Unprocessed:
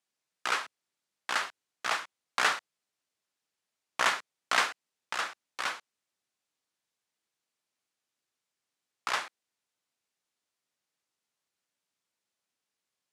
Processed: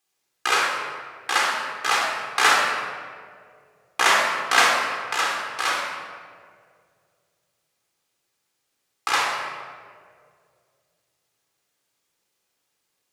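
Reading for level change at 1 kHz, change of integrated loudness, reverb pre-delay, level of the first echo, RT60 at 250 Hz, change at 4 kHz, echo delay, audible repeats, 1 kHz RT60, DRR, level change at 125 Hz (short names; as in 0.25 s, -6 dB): +11.0 dB, +10.0 dB, 3 ms, none, 2.4 s, +10.5 dB, none, none, 1.8 s, -2.0 dB, n/a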